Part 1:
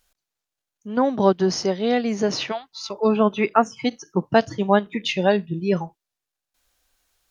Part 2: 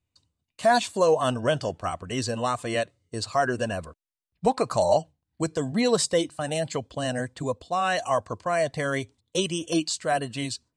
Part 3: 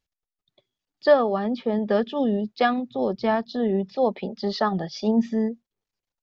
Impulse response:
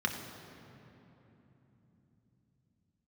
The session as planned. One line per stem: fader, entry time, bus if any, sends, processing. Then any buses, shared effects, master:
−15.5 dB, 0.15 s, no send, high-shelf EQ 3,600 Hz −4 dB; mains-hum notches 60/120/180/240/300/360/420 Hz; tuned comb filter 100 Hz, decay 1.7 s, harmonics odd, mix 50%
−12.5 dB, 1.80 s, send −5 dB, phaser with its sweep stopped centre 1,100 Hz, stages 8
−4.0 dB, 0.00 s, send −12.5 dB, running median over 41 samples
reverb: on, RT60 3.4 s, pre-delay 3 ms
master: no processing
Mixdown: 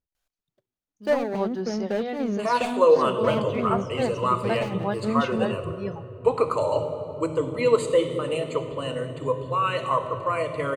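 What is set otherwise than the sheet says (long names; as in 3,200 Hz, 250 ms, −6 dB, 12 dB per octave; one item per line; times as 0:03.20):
stem 1 −15.5 dB → −4.5 dB
stem 2 −12.5 dB → −0.5 dB
stem 3: send off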